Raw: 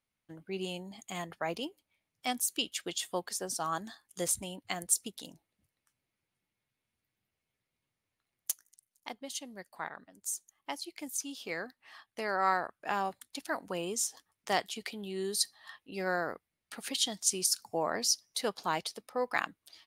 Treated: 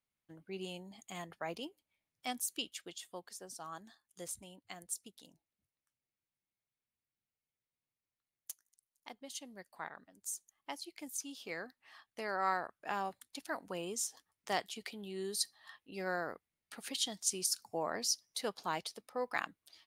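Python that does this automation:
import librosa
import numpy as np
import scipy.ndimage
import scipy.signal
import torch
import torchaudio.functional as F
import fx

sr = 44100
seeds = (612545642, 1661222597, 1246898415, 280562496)

y = fx.gain(x, sr, db=fx.line((2.56, -6.0), (3.01, -12.5), (8.5, -12.5), (9.44, -5.0)))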